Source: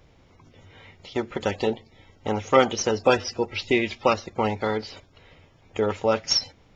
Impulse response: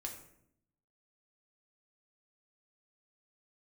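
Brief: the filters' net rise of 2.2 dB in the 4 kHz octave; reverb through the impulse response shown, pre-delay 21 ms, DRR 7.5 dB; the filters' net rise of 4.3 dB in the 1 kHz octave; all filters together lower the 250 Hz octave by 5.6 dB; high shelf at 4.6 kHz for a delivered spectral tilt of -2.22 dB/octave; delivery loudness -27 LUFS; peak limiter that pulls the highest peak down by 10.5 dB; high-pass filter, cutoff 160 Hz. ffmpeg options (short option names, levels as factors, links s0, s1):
-filter_complex "[0:a]highpass=160,equalizer=f=250:t=o:g=-7.5,equalizer=f=1000:t=o:g=6,equalizer=f=4000:t=o:g=7,highshelf=f=4600:g=-5,alimiter=limit=0.237:level=0:latency=1,asplit=2[s0][s1];[1:a]atrim=start_sample=2205,adelay=21[s2];[s1][s2]afir=irnorm=-1:irlink=0,volume=0.531[s3];[s0][s3]amix=inputs=2:normalize=0,volume=0.891"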